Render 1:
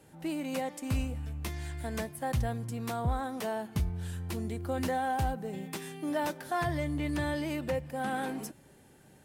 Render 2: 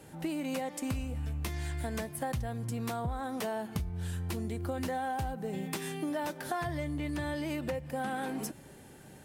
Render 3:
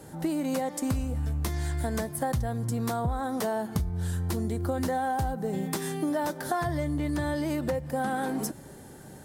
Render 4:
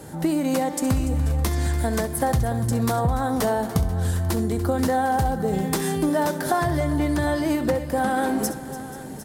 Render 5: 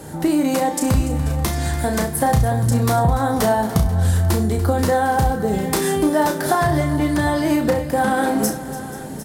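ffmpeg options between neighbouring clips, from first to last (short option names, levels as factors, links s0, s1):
-af "acompressor=threshold=0.0126:ratio=6,volume=2"
-af "equalizer=f=2600:t=o:w=0.71:g=-9.5,volume=2"
-af "aecho=1:1:66|290|487|754:0.2|0.178|0.112|0.168,volume=2.11"
-filter_complex "[0:a]asplit=2[s0][s1];[s1]adelay=33,volume=0.501[s2];[s0][s2]amix=inputs=2:normalize=0,volume=1.58"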